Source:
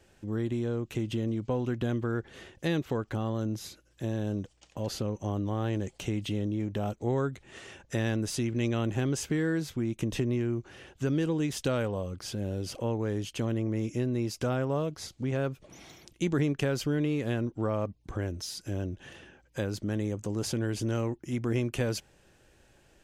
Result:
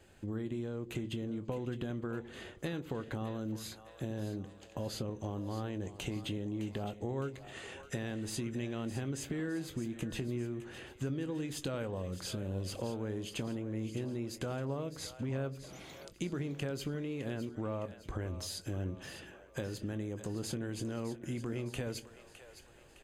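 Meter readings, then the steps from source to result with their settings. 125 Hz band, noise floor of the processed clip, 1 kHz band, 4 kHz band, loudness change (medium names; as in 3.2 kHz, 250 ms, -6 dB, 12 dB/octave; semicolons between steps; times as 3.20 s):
-8.0 dB, -57 dBFS, -7.0 dB, -4.5 dB, -7.5 dB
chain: compression, threshold -35 dBFS, peak gain reduction 11.5 dB; band-stop 5.6 kHz, Q 5.4; doubling 22 ms -13 dB; two-band feedback delay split 480 Hz, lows 82 ms, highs 611 ms, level -12 dB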